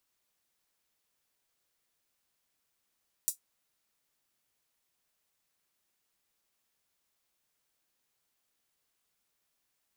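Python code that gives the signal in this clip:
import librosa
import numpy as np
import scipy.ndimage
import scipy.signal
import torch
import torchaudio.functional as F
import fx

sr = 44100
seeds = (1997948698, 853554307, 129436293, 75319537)

y = fx.drum_hat(sr, length_s=0.24, from_hz=7400.0, decay_s=0.12)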